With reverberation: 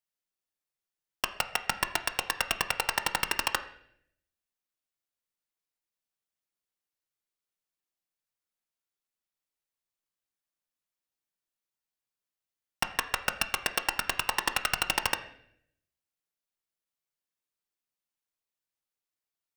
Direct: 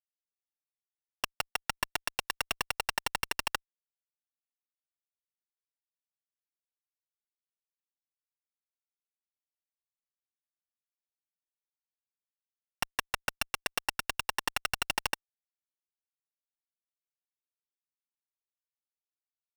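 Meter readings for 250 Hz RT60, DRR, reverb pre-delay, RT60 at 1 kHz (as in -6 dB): 0.90 s, 8.0 dB, 5 ms, 0.60 s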